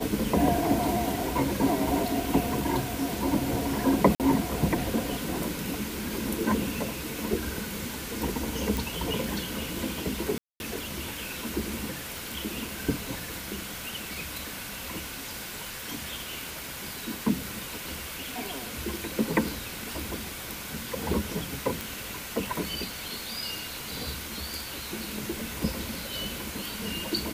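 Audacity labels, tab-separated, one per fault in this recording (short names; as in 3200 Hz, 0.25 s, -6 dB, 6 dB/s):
4.150000	4.200000	gap 48 ms
8.770000	8.770000	pop
10.380000	10.600000	gap 0.221 s
12.180000	12.180000	pop
16.490000	16.490000	pop
21.810000	21.810000	pop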